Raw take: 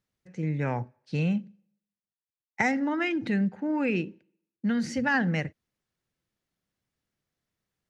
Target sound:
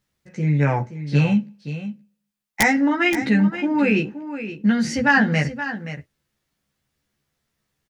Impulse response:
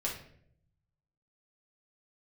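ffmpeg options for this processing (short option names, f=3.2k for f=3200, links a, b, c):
-filter_complex "[0:a]equalizer=f=390:w=0.62:g=-2.5,aeval=exprs='(mod(5.31*val(0)+1,2)-1)/5.31':c=same,asplit=2[a][b];[b]adelay=14,volume=-2dB[c];[a][c]amix=inputs=2:normalize=0,aecho=1:1:524:0.266,volume=7.5dB"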